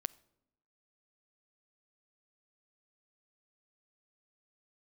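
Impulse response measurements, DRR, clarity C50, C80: 14.5 dB, 22.5 dB, 25.0 dB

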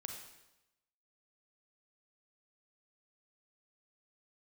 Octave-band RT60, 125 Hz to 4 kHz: 0.95, 0.90, 0.95, 0.95, 0.90, 0.90 seconds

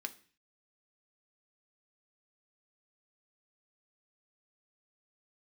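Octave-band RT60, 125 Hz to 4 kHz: 0.60, 0.50, 0.45, 0.40, 0.50, 0.45 seconds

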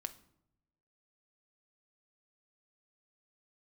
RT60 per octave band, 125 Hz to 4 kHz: 1.2, 1.1, 0.90, 0.70, 0.55, 0.45 seconds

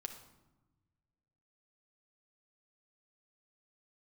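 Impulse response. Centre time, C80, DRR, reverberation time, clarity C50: 17 ms, 10.5 dB, 4.5 dB, 1.1 s, 8.0 dB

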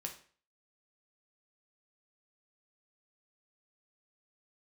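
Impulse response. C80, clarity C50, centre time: 15.0 dB, 10.0 dB, 17 ms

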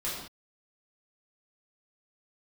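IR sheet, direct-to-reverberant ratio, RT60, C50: −9.0 dB, non-exponential decay, 1.0 dB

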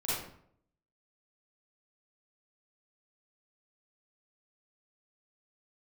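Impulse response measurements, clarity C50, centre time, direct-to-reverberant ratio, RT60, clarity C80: −4.0 dB, 74 ms, −10.5 dB, 0.65 s, 2.5 dB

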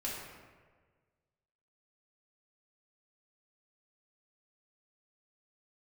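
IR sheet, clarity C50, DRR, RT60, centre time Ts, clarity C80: 0.5 dB, −6.0 dB, 1.5 s, 82 ms, 2.5 dB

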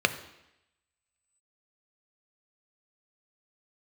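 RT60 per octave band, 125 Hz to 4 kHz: 0.75, 0.85, 0.85, 0.85, 0.95, 0.90 seconds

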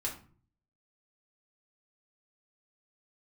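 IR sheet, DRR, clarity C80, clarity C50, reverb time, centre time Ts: −3.5 dB, 14.0 dB, 9.0 dB, 0.45 s, 21 ms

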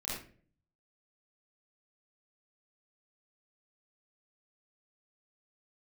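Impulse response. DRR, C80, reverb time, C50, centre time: −9.5 dB, 5.0 dB, 0.45 s, 0.0 dB, 57 ms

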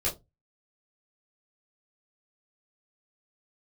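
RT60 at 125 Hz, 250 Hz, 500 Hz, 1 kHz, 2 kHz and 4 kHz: 0.40, 0.30, 0.25, 0.20, 0.15, 0.15 seconds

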